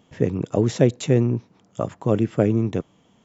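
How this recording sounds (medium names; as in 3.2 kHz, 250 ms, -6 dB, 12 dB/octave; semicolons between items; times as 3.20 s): noise floor -60 dBFS; spectral tilt -8.5 dB/octave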